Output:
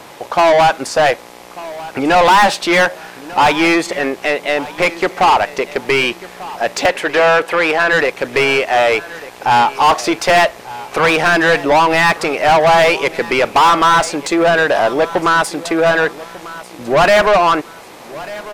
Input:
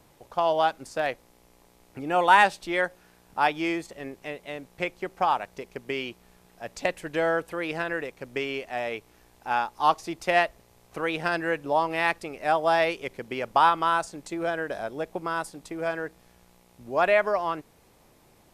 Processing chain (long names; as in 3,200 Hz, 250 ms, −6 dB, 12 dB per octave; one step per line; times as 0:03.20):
mid-hump overdrive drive 32 dB, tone 3,300 Hz, clips at −4 dBFS
0:06.86–0:07.93: bass and treble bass −9 dB, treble −5 dB
on a send: repeating echo 1,194 ms, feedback 32%, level −18 dB
on the sum: level +1.5 dB